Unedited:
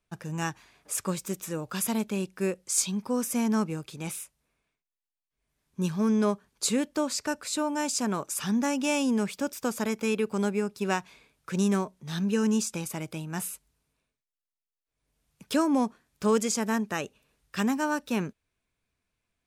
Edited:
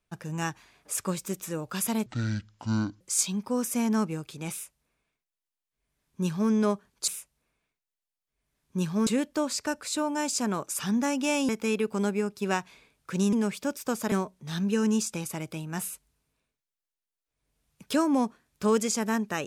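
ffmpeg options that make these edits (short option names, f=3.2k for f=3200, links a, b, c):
-filter_complex "[0:a]asplit=8[a][b][c][d][e][f][g][h];[a]atrim=end=2.064[i];[b]atrim=start=2.06:end=2.6,asetpts=PTS-STARTPTS,asetrate=25137,aresample=44100[j];[c]atrim=start=2.596:end=6.672[k];[d]atrim=start=4.108:end=6.102[l];[e]atrim=start=6.668:end=9.092[m];[f]atrim=start=9.878:end=11.722[n];[g]atrim=start=9.088:end=9.882[o];[h]atrim=start=11.718[p];[i][j]acrossfade=d=0.004:c1=hsin:c2=hsin[q];[q][k]acrossfade=d=0.004:c1=hsin:c2=hsin[r];[r][l]acrossfade=d=0.004:c1=hsin:c2=hsin[s];[s][m]acrossfade=d=0.004:c1=hsin:c2=hsin[t];[t][n]acrossfade=d=0.004:c1=hsin:c2=hsin[u];[u][o]acrossfade=d=0.004:c1=hsin:c2=hsin[v];[v][p]acrossfade=d=0.004:c1=hsin:c2=hsin"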